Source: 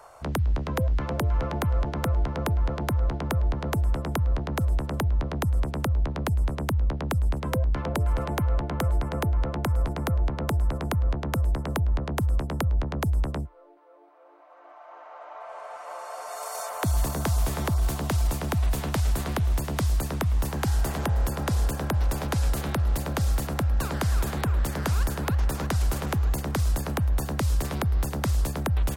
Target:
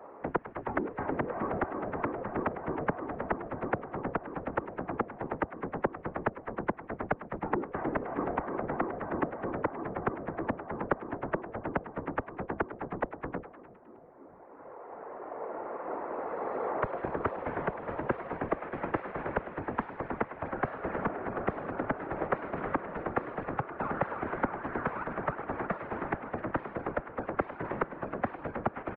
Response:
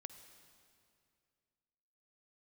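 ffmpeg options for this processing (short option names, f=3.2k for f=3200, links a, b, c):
-filter_complex "[0:a]highpass=f=380:t=q:w=0.5412,highpass=f=380:t=q:w=1.307,lowpass=f=2.2k:t=q:w=0.5176,lowpass=f=2.2k:t=q:w=0.7071,lowpass=f=2.2k:t=q:w=1.932,afreqshift=-200,asplit=7[a][b][c][d][e][f][g];[b]adelay=102,afreqshift=110,volume=-15dB[h];[c]adelay=204,afreqshift=220,volume=-19.3dB[i];[d]adelay=306,afreqshift=330,volume=-23.6dB[j];[e]adelay=408,afreqshift=440,volume=-27.9dB[k];[f]adelay=510,afreqshift=550,volume=-32.2dB[l];[g]adelay=612,afreqshift=660,volume=-36.5dB[m];[a][h][i][j][k][l][m]amix=inputs=7:normalize=0,afftfilt=real='hypot(re,im)*cos(2*PI*random(0))':imag='hypot(re,im)*sin(2*PI*random(1))':win_size=512:overlap=0.75,volume=7.5dB"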